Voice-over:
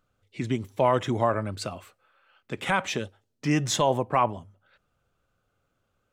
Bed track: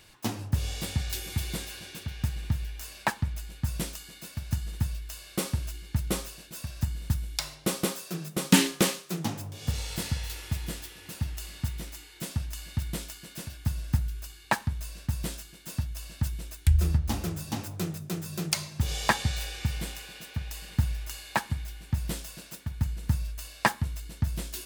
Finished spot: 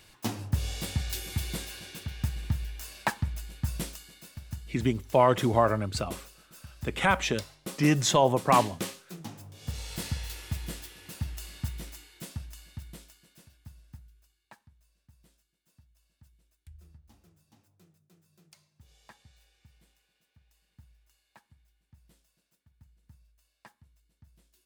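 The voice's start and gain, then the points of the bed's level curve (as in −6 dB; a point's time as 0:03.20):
4.35 s, +1.0 dB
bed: 0:03.69 −1 dB
0:04.69 −10.5 dB
0:09.29 −10.5 dB
0:10.04 −2.5 dB
0:11.89 −2.5 dB
0:14.78 −30.5 dB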